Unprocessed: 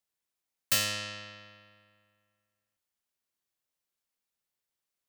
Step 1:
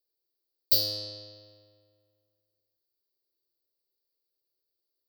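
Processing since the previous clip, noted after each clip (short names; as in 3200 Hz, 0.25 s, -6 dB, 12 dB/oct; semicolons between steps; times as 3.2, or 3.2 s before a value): EQ curve 130 Hz 0 dB, 190 Hz -29 dB, 330 Hz +9 dB, 480 Hz +7 dB, 1500 Hz -25 dB, 2700 Hz -21 dB, 4600 Hz +10 dB, 7100 Hz -20 dB, 16000 Hz +8 dB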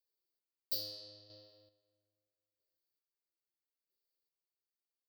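chopper 0.77 Hz, depth 60%, duty 30%; flange 1.2 Hz, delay 3.4 ms, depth 3.8 ms, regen -37%; gain -2 dB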